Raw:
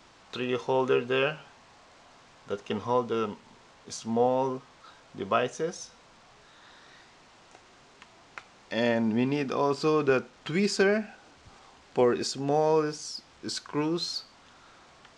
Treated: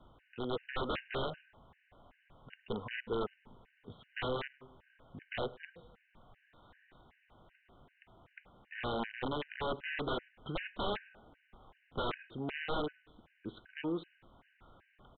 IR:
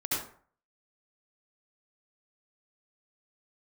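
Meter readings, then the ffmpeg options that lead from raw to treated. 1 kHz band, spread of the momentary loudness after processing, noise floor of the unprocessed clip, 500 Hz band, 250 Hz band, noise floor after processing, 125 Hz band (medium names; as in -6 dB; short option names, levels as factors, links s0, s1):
-10.0 dB, 19 LU, -57 dBFS, -13.5 dB, -12.5 dB, -73 dBFS, -9.0 dB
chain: -filter_complex "[0:a]aresample=8000,aeval=exprs='(mod(11.9*val(0)+1,2)-1)/11.9':c=same,aresample=44100,equalizer=f=570:t=o:w=0.77:g=2.5,acrossover=split=270[s0][s1];[s0]acompressor=threshold=0.00708:ratio=6[s2];[s2][s1]amix=inputs=2:normalize=0,aemphasis=mode=reproduction:type=bsi,asplit=2[s3][s4];[s4]adelay=105,lowpass=f=2200:p=1,volume=0.1,asplit=2[s5][s6];[s6]adelay=105,lowpass=f=2200:p=1,volume=0.37,asplit=2[s7][s8];[s8]adelay=105,lowpass=f=2200:p=1,volume=0.37[s9];[s3][s5][s7][s9]amix=inputs=4:normalize=0,afftfilt=real='re*gt(sin(2*PI*2.6*pts/sr)*(1-2*mod(floor(b*sr/1024/1500),2)),0)':imag='im*gt(sin(2*PI*2.6*pts/sr)*(1-2*mod(floor(b*sr/1024/1500),2)),0)':win_size=1024:overlap=0.75,volume=0.422"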